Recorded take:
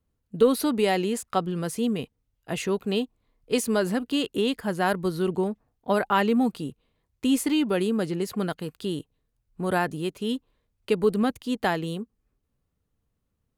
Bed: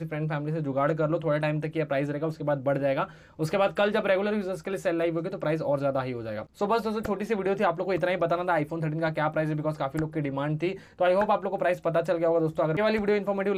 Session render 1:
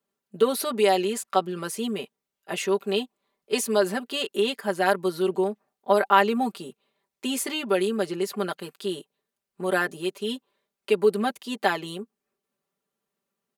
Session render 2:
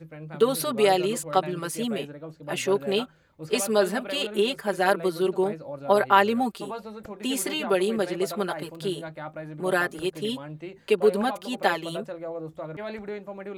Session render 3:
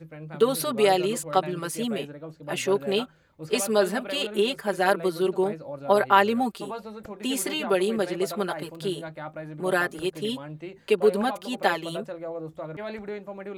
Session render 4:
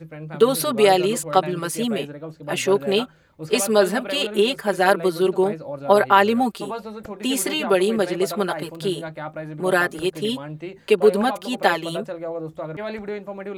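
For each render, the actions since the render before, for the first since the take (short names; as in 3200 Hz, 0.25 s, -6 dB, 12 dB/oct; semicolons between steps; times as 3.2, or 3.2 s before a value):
HPF 350 Hz 12 dB/oct; comb 5.1 ms, depth 88%
add bed -10.5 dB
nothing audible
gain +5 dB; limiter -1 dBFS, peak gain reduction 2.5 dB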